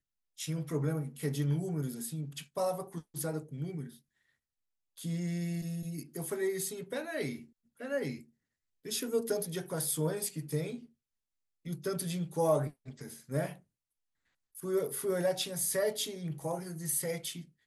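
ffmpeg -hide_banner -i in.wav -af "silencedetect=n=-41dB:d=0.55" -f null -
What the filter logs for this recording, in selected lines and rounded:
silence_start: 3.89
silence_end: 4.98 | silence_duration: 1.09
silence_start: 8.18
silence_end: 8.85 | silence_duration: 0.67
silence_start: 10.78
silence_end: 11.66 | silence_duration: 0.88
silence_start: 13.54
silence_end: 14.57 | silence_duration: 1.03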